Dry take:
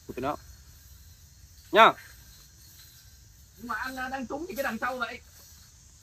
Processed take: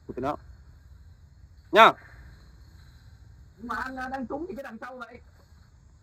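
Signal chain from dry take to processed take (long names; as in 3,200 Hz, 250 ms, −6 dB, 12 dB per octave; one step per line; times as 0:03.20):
adaptive Wiener filter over 15 samples
0:01.94–0:03.83: flutter between parallel walls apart 11.7 metres, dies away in 1.1 s
0:04.54–0:05.15: downward compressor 10 to 1, threshold −38 dBFS, peak gain reduction 12 dB
level +2 dB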